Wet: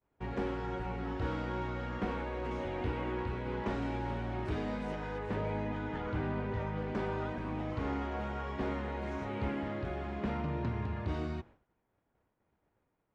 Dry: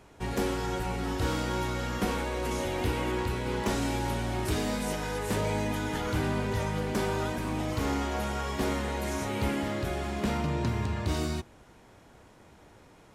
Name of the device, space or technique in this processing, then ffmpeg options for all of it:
hearing-loss simulation: -filter_complex "[0:a]lowpass=2300,agate=range=-33dB:threshold=-43dB:ratio=3:detection=peak,asettb=1/sr,asplit=3[link_01][link_02][link_03];[link_01]atrim=end=5.184[link_04];[link_02]atrim=start=5.18:end=6.79,asetpts=PTS-STARTPTS,afade=type=in:duration=0.004:curve=qsin,afade=type=out:start_time=1.606:duration=0.004:curve=qsin,highshelf=frequency=5500:gain=-7[link_05];[link_03]atrim=start=6.786[link_06];[link_04][link_05]acrossfade=duration=0.004:curve1=hsin:curve2=qsin[link_07];[link_07][link_06]acrossfade=duration=0.004:curve1=qsin:curve2=hsin,volume=-5.5dB"

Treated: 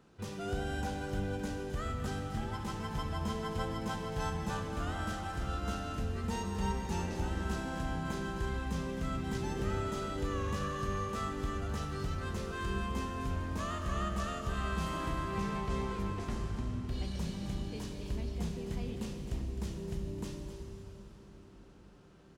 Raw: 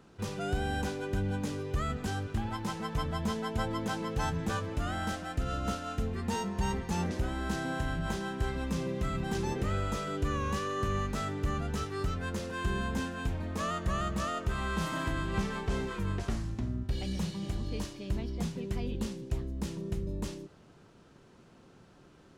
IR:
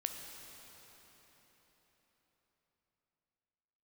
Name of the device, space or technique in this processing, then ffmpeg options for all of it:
cave: -filter_complex "[0:a]aecho=1:1:261:0.299[link_01];[1:a]atrim=start_sample=2205[link_02];[link_01][link_02]afir=irnorm=-1:irlink=0,volume=-4dB"

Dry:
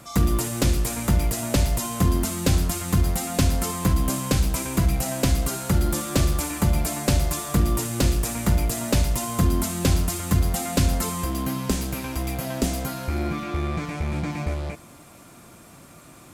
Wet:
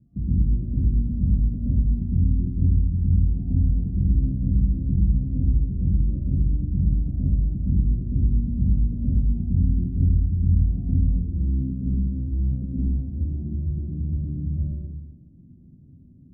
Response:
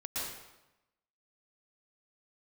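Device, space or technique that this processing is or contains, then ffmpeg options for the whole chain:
club heard from the street: -filter_complex "[0:a]alimiter=limit=-14dB:level=0:latency=1,lowpass=frequency=230:width=0.5412,lowpass=frequency=230:width=1.3066[link_01];[1:a]atrim=start_sample=2205[link_02];[link_01][link_02]afir=irnorm=-1:irlink=0"

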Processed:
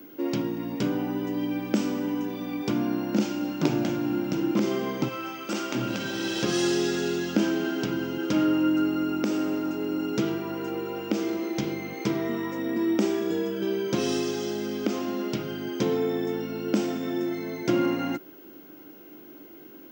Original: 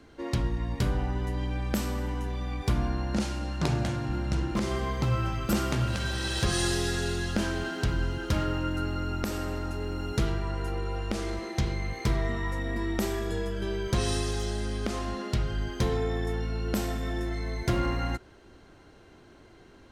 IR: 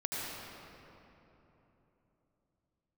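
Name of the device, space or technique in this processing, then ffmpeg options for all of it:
old television with a line whistle: -filter_complex "[0:a]asettb=1/sr,asplit=3[link_01][link_02][link_03];[link_01]atrim=end=5.084[link_04];[link_02]atrim=start=5.08:end=5.75,asetpts=PTS-STARTPTS,afade=type=in:duration=0.004:curve=qsin,afade=type=out:start_time=0.666:duration=0.004:curve=qsin,highpass=frequency=790:poles=1[link_05];[link_03]atrim=start=5.746[link_06];[link_04][link_05]acrossfade=duration=0.004:curve1=hsin:curve2=qsin[link_07];[link_07][link_06]acrossfade=duration=0.004:curve1=qsin:curve2=hsin,highpass=frequency=170:width=0.5412,highpass=frequency=170:width=1.3066,equalizer=frequency=300:width_type=q:width=4:gain=9,equalizer=frequency=720:width_type=q:width=4:gain=-4,equalizer=frequency=1100:width_type=q:width=4:gain=-6,equalizer=frequency=1800:width_type=q:width=4:gain=-7,equalizer=frequency=4100:width_type=q:width=4:gain=-8,lowpass=frequency=6500:width=0.5412,lowpass=frequency=6500:width=1.3066,aeval=exprs='val(0)+0.00224*sin(2*PI*15625*n/s)':channel_layout=same,volume=4dB"

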